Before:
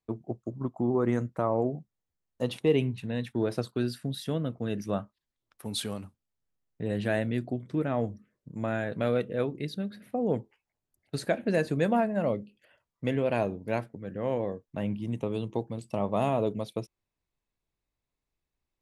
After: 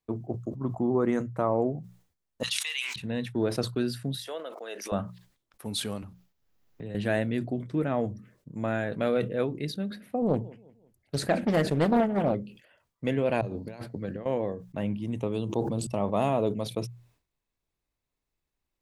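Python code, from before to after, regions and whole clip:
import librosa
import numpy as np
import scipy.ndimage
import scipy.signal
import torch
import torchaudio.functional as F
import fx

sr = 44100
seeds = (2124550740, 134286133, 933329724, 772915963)

y = fx.chain(x, sr, fx.highpass(hz=1400.0, slope=24),
    fx.peak_eq(hz=6300.0, db=13.0, octaves=1.9),
    fx.sustainer(db_per_s=27.0), at=(2.43, 2.96))
y = fx.chain(y, sr, fx.highpass(hz=500.0, slope=24),
    fx.pre_swell(db_per_s=88.0), at=(4.27, 4.92))
y = fx.chain(y, sr, fx.peak_eq(hz=8900.0, db=-13.0, octaves=0.36),
    fx.band_squash(depth_pct=70), at=(6.02, 6.95))
y = fx.chain(y, sr, fx.low_shelf(hz=120.0, db=7.0),
    fx.echo_feedback(ms=176, feedback_pct=43, wet_db=-23.0),
    fx.doppler_dist(depth_ms=0.5), at=(10.22, 12.35))
y = fx.chain(y, sr, fx.highpass(hz=45.0, slope=12),
    fx.peak_eq(hz=4400.0, db=14.0, octaves=0.26),
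    fx.over_compress(threshold_db=-37.0, ratio=-0.5), at=(13.41, 14.26))
y = fx.chain(y, sr, fx.peak_eq(hz=2000.0, db=-14.5, octaves=0.42),
    fx.sustainer(db_per_s=22.0), at=(15.39, 15.87))
y = fx.hum_notches(y, sr, base_hz=60, count=3)
y = fx.sustainer(y, sr, db_per_s=120.0)
y = y * 10.0 ** (1.0 / 20.0)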